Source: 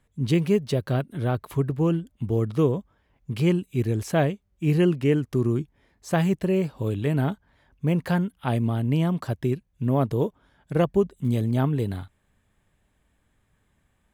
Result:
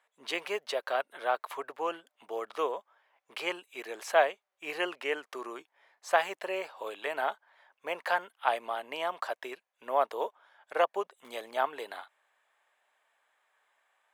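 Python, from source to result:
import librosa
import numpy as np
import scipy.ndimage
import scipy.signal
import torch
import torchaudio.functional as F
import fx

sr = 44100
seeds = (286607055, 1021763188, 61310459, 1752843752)

y = scipy.signal.sosfilt(scipy.signal.butter(4, 660.0, 'highpass', fs=sr, output='sos'), x)
y = fx.high_shelf(y, sr, hz=4400.0, db=-12.0)
y = F.gain(torch.from_numpy(y), 4.5).numpy()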